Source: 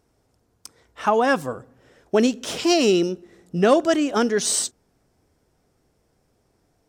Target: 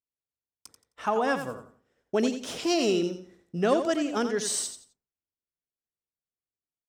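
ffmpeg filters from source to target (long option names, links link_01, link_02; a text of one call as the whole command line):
ffmpeg -i in.wav -af "agate=range=-33dB:threshold=-45dB:ratio=3:detection=peak,aecho=1:1:87|174|261:0.355|0.0887|0.0222,volume=-7.5dB" out.wav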